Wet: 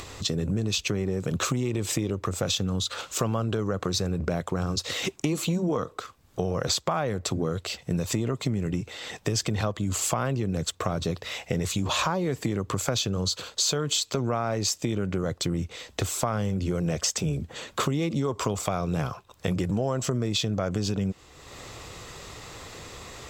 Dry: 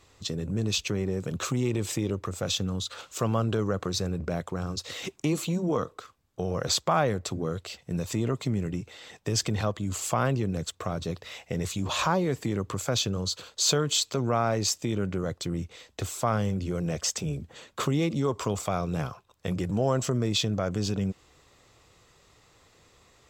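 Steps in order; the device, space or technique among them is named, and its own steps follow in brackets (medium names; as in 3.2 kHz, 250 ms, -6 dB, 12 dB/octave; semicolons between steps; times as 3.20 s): upward and downward compression (upward compressor, threshold -38 dBFS; compression, threshold -30 dBFS, peak gain reduction 11 dB); trim +7 dB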